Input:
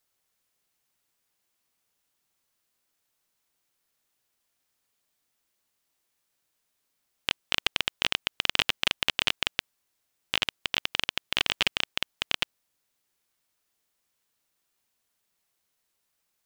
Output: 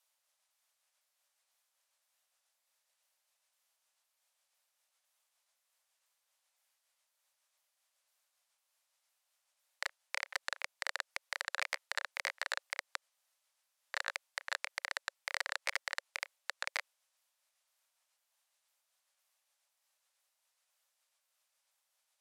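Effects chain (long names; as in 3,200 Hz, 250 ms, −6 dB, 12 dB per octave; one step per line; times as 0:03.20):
pitch shifter swept by a sawtooth −5.5 semitones, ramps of 374 ms
Chebyshev high-pass filter 740 Hz, order 5
brickwall limiter −13.5 dBFS, peak gain reduction 7 dB
wrong playback speed 45 rpm record played at 33 rpm
saturating transformer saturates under 3,300 Hz
level −1.5 dB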